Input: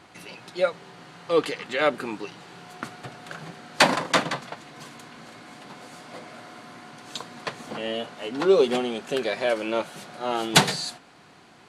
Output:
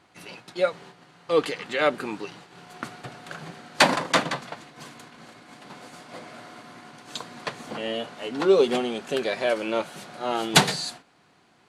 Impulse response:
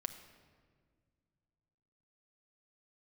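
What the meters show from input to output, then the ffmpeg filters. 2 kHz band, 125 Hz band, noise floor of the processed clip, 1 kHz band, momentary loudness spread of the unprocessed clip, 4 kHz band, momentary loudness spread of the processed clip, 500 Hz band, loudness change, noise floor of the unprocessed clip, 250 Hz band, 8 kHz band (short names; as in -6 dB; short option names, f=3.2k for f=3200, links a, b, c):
0.0 dB, 0.0 dB, -60 dBFS, 0.0 dB, 24 LU, 0.0 dB, 23 LU, 0.0 dB, 0.0 dB, -52 dBFS, 0.0 dB, 0.0 dB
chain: -af "agate=range=-8dB:threshold=-44dB:ratio=16:detection=peak"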